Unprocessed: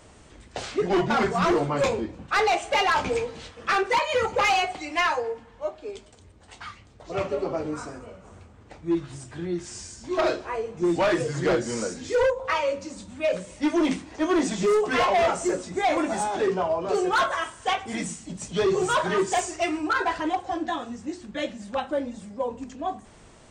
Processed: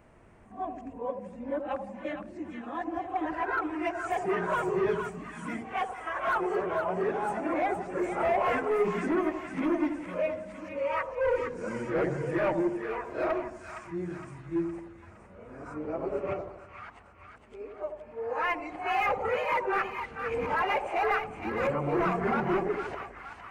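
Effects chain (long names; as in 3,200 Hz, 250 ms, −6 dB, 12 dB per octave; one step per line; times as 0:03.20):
played backwards from end to start
flat-topped bell 5,300 Hz −16 dB
echo with a time of its own for lows and highs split 910 Hz, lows 83 ms, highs 463 ms, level −6.5 dB
level −6 dB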